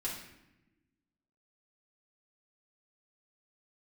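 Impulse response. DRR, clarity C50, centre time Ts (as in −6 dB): −6.0 dB, 3.5 dB, 44 ms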